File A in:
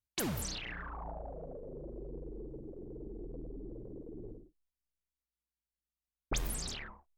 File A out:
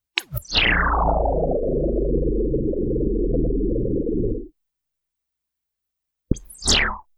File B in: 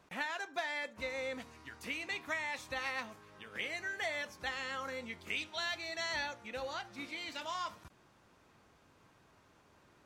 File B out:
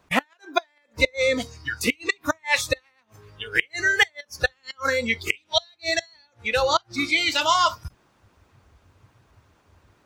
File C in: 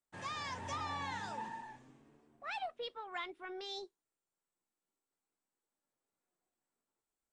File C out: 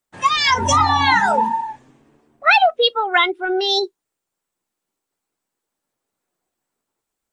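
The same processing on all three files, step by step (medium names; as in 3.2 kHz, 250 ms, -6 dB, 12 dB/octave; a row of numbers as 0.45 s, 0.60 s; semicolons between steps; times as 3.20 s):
inverted gate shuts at -28 dBFS, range -26 dB; spectral noise reduction 18 dB; harmonic-percussive split percussive +5 dB; peak normalisation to -1.5 dBFS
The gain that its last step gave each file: +22.0 dB, +19.0 dB, +25.5 dB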